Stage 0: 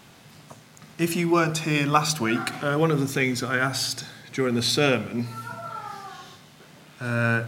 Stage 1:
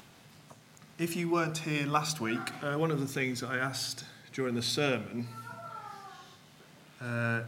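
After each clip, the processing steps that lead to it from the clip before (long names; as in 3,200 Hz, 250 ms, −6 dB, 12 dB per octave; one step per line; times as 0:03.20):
upward compression, threshold −42 dBFS
level −8.5 dB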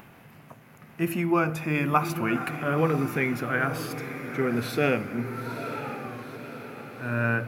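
flat-topped bell 5,500 Hz −14 dB
on a send: feedback delay with all-pass diffusion 930 ms, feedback 55%, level −10 dB
on the sum: level +6 dB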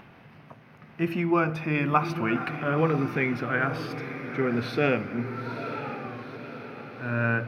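Savitzky-Golay smoothing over 15 samples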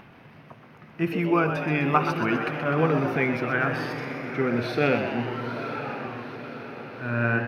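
echo with shifted repeats 126 ms, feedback 60%, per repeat +120 Hz, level −9 dB
level +1 dB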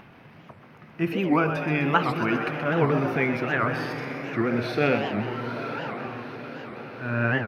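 wow of a warped record 78 rpm, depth 250 cents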